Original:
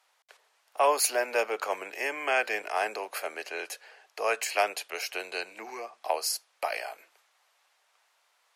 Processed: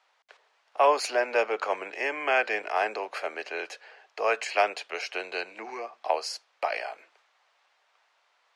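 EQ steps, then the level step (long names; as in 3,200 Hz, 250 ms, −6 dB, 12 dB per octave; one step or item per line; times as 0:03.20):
high-pass filter 100 Hz
high-frequency loss of the air 120 metres
+3.0 dB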